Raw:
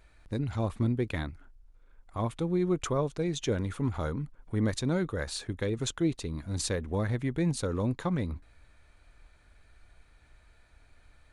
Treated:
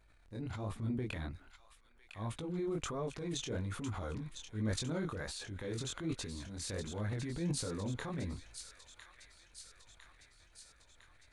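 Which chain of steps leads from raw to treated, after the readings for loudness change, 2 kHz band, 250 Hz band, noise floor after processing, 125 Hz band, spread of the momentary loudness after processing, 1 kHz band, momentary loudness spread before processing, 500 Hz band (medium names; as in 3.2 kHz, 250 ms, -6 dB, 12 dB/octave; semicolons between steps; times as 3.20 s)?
-8.5 dB, -6.5 dB, -9.0 dB, -65 dBFS, -8.5 dB, 19 LU, -8.0 dB, 7 LU, -9.5 dB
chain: chorus 1.3 Hz, delay 18 ms, depth 7.2 ms; transient shaper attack -6 dB, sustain +8 dB; feedback echo behind a high-pass 1005 ms, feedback 63%, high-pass 1.7 kHz, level -8 dB; trim -5.5 dB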